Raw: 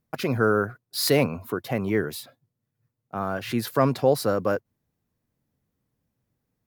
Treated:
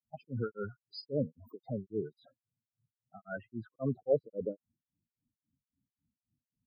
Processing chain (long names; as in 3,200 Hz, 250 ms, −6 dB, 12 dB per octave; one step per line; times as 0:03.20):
spectral peaks only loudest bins 8
low-pass filter sweep 12,000 Hz → 310 Hz, 0:01.85–0:04.63
granular cloud 249 ms, grains 3.7 per second, spray 18 ms, pitch spread up and down by 0 semitones
level −7 dB